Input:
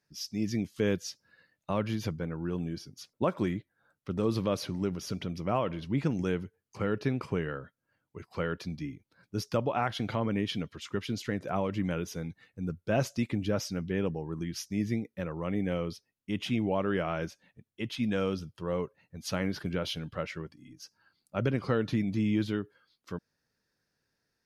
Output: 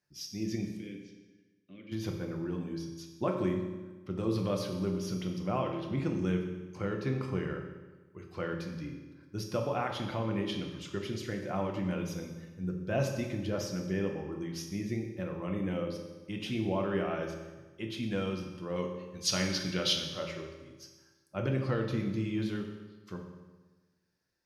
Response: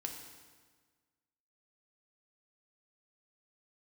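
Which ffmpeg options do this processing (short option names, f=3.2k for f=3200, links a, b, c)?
-filter_complex "[0:a]asplit=3[a][b][c];[a]afade=t=out:st=0.76:d=0.02[d];[b]asplit=3[e][f][g];[e]bandpass=f=270:t=q:w=8,volume=0dB[h];[f]bandpass=f=2.29k:t=q:w=8,volume=-6dB[i];[g]bandpass=f=3.01k:t=q:w=8,volume=-9dB[j];[h][i][j]amix=inputs=3:normalize=0,afade=t=in:st=0.76:d=0.02,afade=t=out:st=1.91:d=0.02[k];[c]afade=t=in:st=1.91:d=0.02[l];[d][k][l]amix=inputs=3:normalize=0,asettb=1/sr,asplit=3[m][n][o];[m]atrim=end=18.764[p];[n]atrim=start=18.76:end=20.12,asetpts=PTS-STARTPTS,afade=t=in:d=0.004:c=qsin,afade=t=out:st=1.356:d=0.004:c=qsin,equalizer=f=5k:t=o:w=2.3:g=14[q];[o]atrim=start=20.116[r];[p][q]acrossfade=d=0.004:c1=hsin:c2=qsin[s];[s][r]acrossfade=d=0.004:c1=qsin:c2=hsin[t];[1:a]atrim=start_sample=2205,asetrate=52920,aresample=44100[u];[t][u]afir=irnorm=-1:irlink=0"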